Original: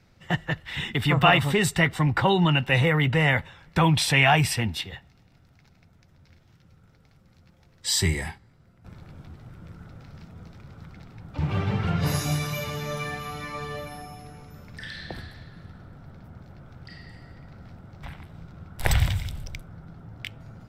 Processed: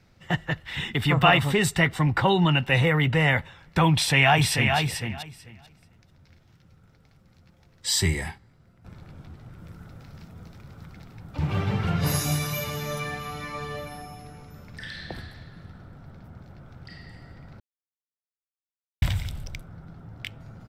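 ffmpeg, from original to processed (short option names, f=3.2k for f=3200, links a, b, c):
-filter_complex "[0:a]asplit=2[a][b];[b]afade=t=in:st=3.93:d=0.01,afade=t=out:st=4.78:d=0.01,aecho=0:1:440|880|1320:0.562341|0.0843512|0.0126527[c];[a][c]amix=inputs=2:normalize=0,asettb=1/sr,asplit=3[d][e][f];[d]atrim=end=9.584[g];[e]atrim=start=9.58:end=13,asetpts=PTS-STARTPTS,afade=t=in:d=0.004:c=qsin,afade=t=out:st=3.416:d=0.004:c=qsin,highshelf=f=9k:g=9.5[h];[f]atrim=start=12.996[i];[g][h]acrossfade=d=0.004:c1=hsin:c2=qsin[j];[j][i]acrossfade=d=0.004:c1=qsin:c2=hsin,asplit=3[k][l][m];[k]atrim=end=17.6,asetpts=PTS-STARTPTS,afade=t=out:st=17.596:d=0.004:c=hsin[n];[l]atrim=start=17.6:end=19.02,asetpts=PTS-STARTPTS,volume=0[o];[m]atrim=start=19.02,asetpts=PTS-STARTPTS,afade=t=in:d=0.004:c=hsin[p];[n][o][p]concat=n=3:v=0:a=1"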